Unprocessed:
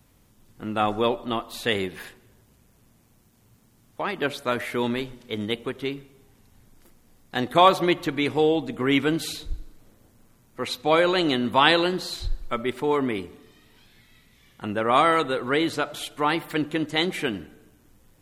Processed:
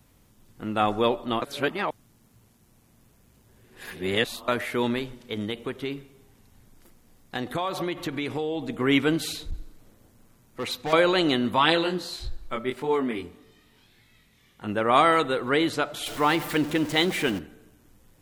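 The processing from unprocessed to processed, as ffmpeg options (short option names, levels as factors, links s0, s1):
-filter_complex "[0:a]asettb=1/sr,asplit=3[s0][s1][s2];[s0]atrim=end=4.984[s3];[s1]atrim=start=4.98:end=8.67,asetpts=PTS-STARTPTS,afade=t=in:d=0.004:c=qsin,afade=t=out:st=3.686:d=0.004:c=qsin,acompressor=threshold=0.0562:ratio=6:attack=3.2:release=140:knee=1:detection=peak[s4];[s2]atrim=start=8.666[s5];[s3][s4]acrossfade=d=0.004:c1=hsin:c2=qsin[s6];[s6][s5]acrossfade=d=0.004:c1=qsin:c2=hsin,asettb=1/sr,asplit=3[s7][s8][s9];[s7]atrim=end=9.274[s10];[s8]atrim=start=9.27:end=10.93,asetpts=PTS-STARTPTS,afade=t=in:d=0.004:c=qsin,afade=t=out:st=1.656:d=0.004:c=qsin,volume=18.8,asoftclip=hard,volume=0.0531[s11];[s9]atrim=start=10.926[s12];[s10][s11]acrossfade=d=0.004:c1=hsin:c2=qsin[s13];[s13][s12]acrossfade=d=0.004:c1=qsin:c2=hsin,asplit=3[s14][s15][s16];[s14]afade=t=out:st=11.55:d=0.02[s17];[s15]flanger=delay=18:depth=5.6:speed=1.7,afade=t=in:st=11.55:d=0.02,afade=t=out:st=14.67:d=0.02[s18];[s16]afade=t=in:st=14.67:d=0.02[s19];[s17][s18][s19]amix=inputs=3:normalize=0,asettb=1/sr,asplit=3[s20][s21][s22];[s20]atrim=end=16.064[s23];[s21]atrim=start=16.06:end=17.39,asetpts=PTS-STARTPTS,afade=t=in:d=0.004:c=qsin,afade=t=out:st=1.326:d=0.004:c=qsin,aeval=exprs='val(0)+0.5*0.0251*sgn(val(0))':c=same[s24];[s22]atrim=start=17.386[s25];[s23][s24]acrossfade=d=0.004:c1=hsin:c2=qsin[s26];[s26][s25]acrossfade=d=0.004:c1=qsin:c2=hsin,asplit=3[s27][s28][s29];[s27]atrim=end=1.422[s30];[s28]atrim=start=1.418:end=4.482,asetpts=PTS-STARTPTS,areverse[s31];[s29]atrim=start=4.478[s32];[s30][s31]acrossfade=d=0.004:c1=hsin:c2=hsin[s33];[s33][s32]acrossfade=d=0.004:c1=hsin:c2=hsin"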